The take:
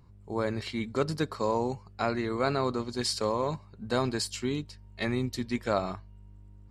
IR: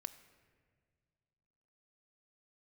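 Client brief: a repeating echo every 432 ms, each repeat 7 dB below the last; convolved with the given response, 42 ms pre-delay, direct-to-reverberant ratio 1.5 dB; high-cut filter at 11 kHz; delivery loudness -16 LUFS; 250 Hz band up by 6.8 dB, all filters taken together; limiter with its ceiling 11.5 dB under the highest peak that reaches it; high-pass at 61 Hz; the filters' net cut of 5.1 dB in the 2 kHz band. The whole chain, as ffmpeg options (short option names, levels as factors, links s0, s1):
-filter_complex "[0:a]highpass=61,lowpass=11000,equalizer=f=250:t=o:g=8,equalizer=f=2000:t=o:g=-7,alimiter=limit=0.0708:level=0:latency=1,aecho=1:1:432|864|1296|1728|2160:0.447|0.201|0.0905|0.0407|0.0183,asplit=2[s0][s1];[1:a]atrim=start_sample=2205,adelay=42[s2];[s1][s2]afir=irnorm=-1:irlink=0,volume=1.33[s3];[s0][s3]amix=inputs=2:normalize=0,volume=5.62"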